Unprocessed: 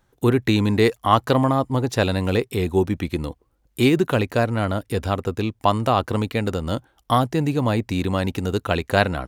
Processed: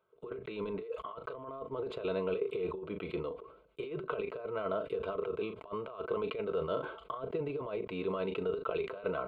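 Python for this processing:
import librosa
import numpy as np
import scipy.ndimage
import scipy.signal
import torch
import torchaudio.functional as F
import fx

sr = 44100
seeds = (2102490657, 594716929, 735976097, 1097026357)

p1 = scipy.signal.sosfilt(scipy.signal.butter(2, 290.0, 'highpass', fs=sr, output='sos'), x)
p2 = fx.high_shelf(p1, sr, hz=3300.0, db=-6.0)
p3 = p2 + 0.58 * np.pad(p2, (int(4.6 * sr / 1000.0), 0))[:len(p2)]
p4 = fx.over_compress(p3, sr, threshold_db=-25.0, ratio=-0.5)
p5 = fx.spacing_loss(p4, sr, db_at_10k=35)
p6 = fx.fixed_phaser(p5, sr, hz=1200.0, stages=8)
p7 = p6 + fx.room_early_taps(p6, sr, ms=(15, 37), db=(-16.5, -16.0), dry=0)
p8 = fx.sustainer(p7, sr, db_per_s=80.0)
y = p8 * librosa.db_to_amplitude(-5.5)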